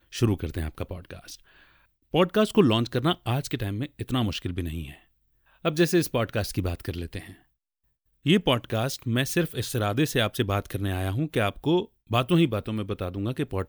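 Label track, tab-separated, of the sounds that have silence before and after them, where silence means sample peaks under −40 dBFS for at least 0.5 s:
2.140000	4.940000	sound
5.640000	7.330000	sound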